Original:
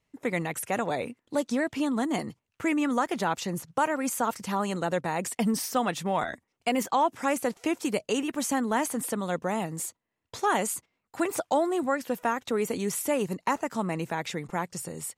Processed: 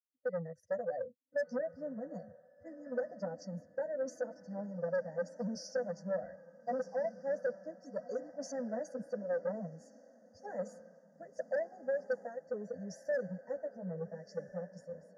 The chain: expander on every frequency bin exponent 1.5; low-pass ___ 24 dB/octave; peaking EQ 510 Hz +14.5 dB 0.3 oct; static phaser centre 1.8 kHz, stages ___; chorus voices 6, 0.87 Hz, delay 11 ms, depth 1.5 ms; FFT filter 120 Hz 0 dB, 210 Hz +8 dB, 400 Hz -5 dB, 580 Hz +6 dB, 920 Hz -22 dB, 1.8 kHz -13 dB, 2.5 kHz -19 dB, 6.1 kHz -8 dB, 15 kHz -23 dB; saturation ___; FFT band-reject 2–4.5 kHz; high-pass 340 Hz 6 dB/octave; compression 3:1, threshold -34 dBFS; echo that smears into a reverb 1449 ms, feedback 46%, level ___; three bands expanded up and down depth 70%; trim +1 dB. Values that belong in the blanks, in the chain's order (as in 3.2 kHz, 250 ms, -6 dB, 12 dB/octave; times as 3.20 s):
7.9 kHz, 8, -26 dBFS, -13 dB